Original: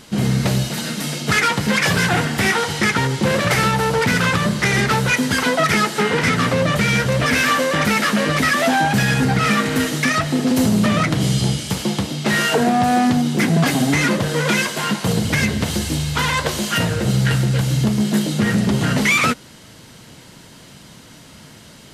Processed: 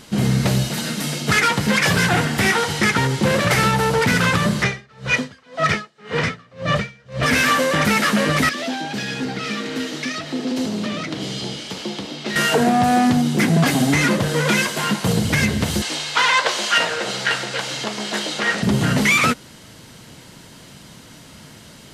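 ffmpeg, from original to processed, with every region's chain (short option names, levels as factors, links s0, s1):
-filter_complex "[0:a]asettb=1/sr,asplit=3[s0][s1][s2];[s0]atrim=end=4.634[s3];[s1]atrim=start=4.63:end=7.23,asetpts=PTS-STARTPTS,afade=t=in:d=0.004:c=qsin,afade=t=out:st=2.596:d=0.004:c=qsin,lowpass=5500,aecho=1:1:1.7:0.34,atrim=end_sample=114660,aeval=exprs='val(0)*pow(10,-34*(0.5-0.5*cos(2*PI*1.9*n/s))/20)':c=same[s4];[s2]atrim=start=7.226[s5];[s3][s4]acrossfade=d=0.004:c1=hsin:c2=qsin[s6];[s6][s5]acrossfade=d=0.004:c1=qsin:c2=hsin,asettb=1/sr,asplit=3[s7][s8][s9];[s7]atrim=end=8.494[s10];[s8]atrim=start=8.49:end=12.36,asetpts=PTS-STARTPTS,afade=t=in:d=0.004:c=qsin,afade=t=out:st=3.866:d=0.004:c=qsin,acrossover=split=260 5600:gain=0.112 1 0.126[s11][s12][s13];[s11][s12][s13]amix=inputs=3:normalize=0,acrossover=split=410|3000[s14][s15][s16];[s15]acompressor=threshold=0.0178:ratio=3:attack=3.2:release=140:knee=2.83:detection=peak[s17];[s14][s17][s16]amix=inputs=3:normalize=0[s18];[s9]atrim=start=12.356[s19];[s10][s18]acrossfade=d=0.004:c1=hsin:c2=qsin[s20];[s20][s19]acrossfade=d=0.004:c1=qsin:c2=hsin,asettb=1/sr,asplit=3[s21][s22][s23];[s21]atrim=end=15.824[s24];[s22]atrim=start=15.82:end=18.63,asetpts=PTS-STARTPTS,afade=t=in:d=0.004:c=qsin,afade=t=out:st=2.806:d=0.004:c=qsin,highpass=630,lowpass=6000,acontrast=24[s25];[s23]atrim=start=18.626[s26];[s24][s25]acrossfade=d=0.004:c1=hsin:c2=qsin[s27];[s27][s26]acrossfade=d=0.004:c1=qsin:c2=hsin"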